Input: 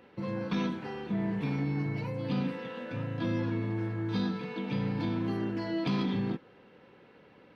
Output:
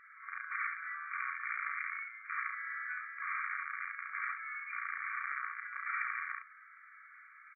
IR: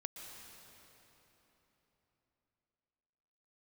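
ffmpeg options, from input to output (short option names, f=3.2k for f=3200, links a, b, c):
-af "aeval=exprs='(mod(17.8*val(0)+1,2)-1)/17.8':c=same,alimiter=level_in=8.5dB:limit=-24dB:level=0:latency=1:release=64,volume=-8.5dB,afftfilt=real='re*between(b*sr/4096,1100,2400)':imag='im*between(b*sr/4096,1100,2400)':win_size=4096:overlap=0.75,aecho=1:1:33|68:0.562|0.668,volume=7.5dB"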